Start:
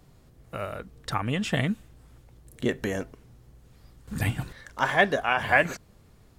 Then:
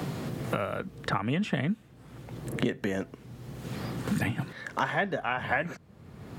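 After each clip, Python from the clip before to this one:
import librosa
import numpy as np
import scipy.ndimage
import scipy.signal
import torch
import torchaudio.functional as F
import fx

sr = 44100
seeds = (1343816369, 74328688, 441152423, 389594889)

y = scipy.signal.sosfilt(scipy.signal.butter(2, 150.0, 'highpass', fs=sr, output='sos'), x)
y = fx.bass_treble(y, sr, bass_db=6, treble_db=-8)
y = fx.band_squash(y, sr, depth_pct=100)
y = y * librosa.db_to_amplitude(-3.0)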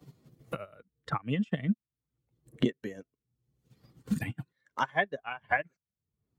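y = fx.bin_expand(x, sr, power=1.5)
y = fx.upward_expand(y, sr, threshold_db=-46.0, expansion=2.5)
y = y * librosa.db_to_amplitude(4.5)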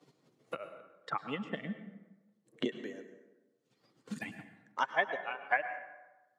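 y = fx.bandpass_edges(x, sr, low_hz=340.0, high_hz=7900.0)
y = fx.rev_plate(y, sr, seeds[0], rt60_s=1.1, hf_ratio=0.55, predelay_ms=90, drr_db=9.5)
y = y * librosa.db_to_amplitude(-2.0)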